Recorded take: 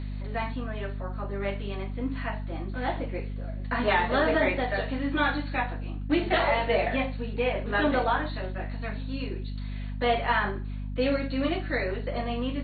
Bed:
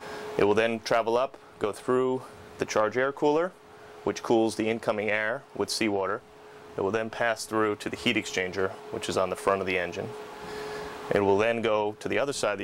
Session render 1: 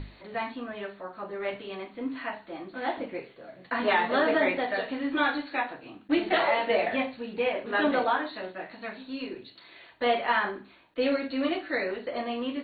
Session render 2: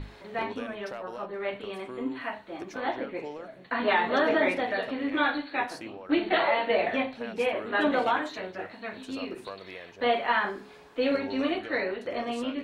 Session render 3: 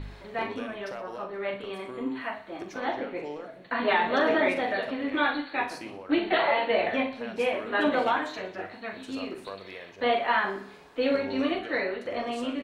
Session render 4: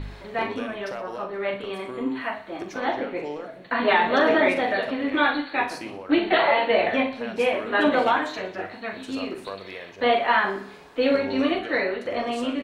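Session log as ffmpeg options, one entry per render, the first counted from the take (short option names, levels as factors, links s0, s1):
-af "bandreject=f=50:t=h:w=6,bandreject=f=100:t=h:w=6,bandreject=f=150:t=h:w=6,bandreject=f=200:t=h:w=6,bandreject=f=250:t=h:w=6"
-filter_complex "[1:a]volume=0.158[s0];[0:a][s0]amix=inputs=2:normalize=0"
-filter_complex "[0:a]asplit=2[s0][s1];[s1]adelay=41,volume=0.282[s2];[s0][s2]amix=inputs=2:normalize=0,aecho=1:1:61|122|183|244|305:0.178|0.0996|0.0558|0.0312|0.0175"
-af "volume=1.68"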